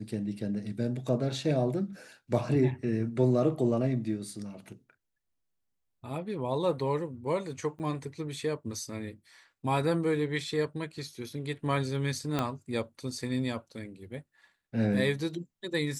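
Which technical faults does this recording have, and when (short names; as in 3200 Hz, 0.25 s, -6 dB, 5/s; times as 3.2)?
7.79–7.8 gap 8.9 ms
12.39 pop -15 dBFS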